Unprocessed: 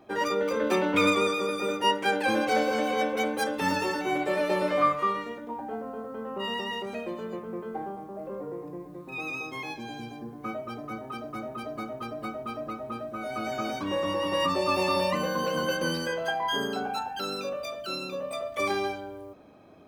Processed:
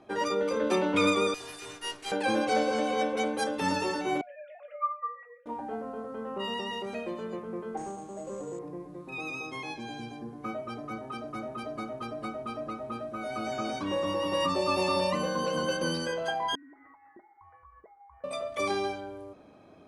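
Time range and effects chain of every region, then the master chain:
1.34–2.12 minimum comb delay 2.8 ms + pre-emphasis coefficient 0.8
4.21–5.46 sine-wave speech + resonator 240 Hz, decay 0.31 s, mix 80%
7.77–8.59 delta modulation 32 kbps, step -51 dBFS + air absorption 200 m + careless resampling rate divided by 6×, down none, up hold
16.55–18.24 elliptic high-pass 2000 Hz, stop band 60 dB + compressor 10:1, threshold -46 dBFS + inverted band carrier 3500 Hz
whole clip: elliptic low-pass 11000 Hz, stop band 40 dB; dynamic EQ 1900 Hz, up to -4 dB, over -40 dBFS, Q 1.3

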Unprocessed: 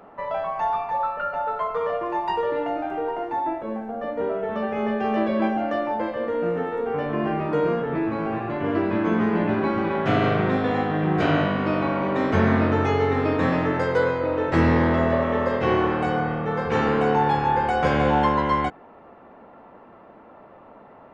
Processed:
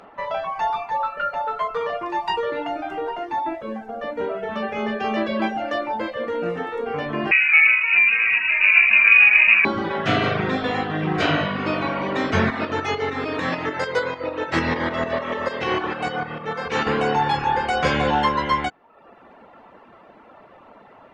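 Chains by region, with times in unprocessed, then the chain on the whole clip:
7.31–9.65 low shelf 260 Hz +6 dB + inverted band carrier 2700 Hz
12.5–16.87 low shelf 160 Hz -7.5 dB + tremolo saw up 6.7 Hz, depth 40%
whole clip: reverb removal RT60 0.72 s; bell 4800 Hz +11 dB 2.8 oct

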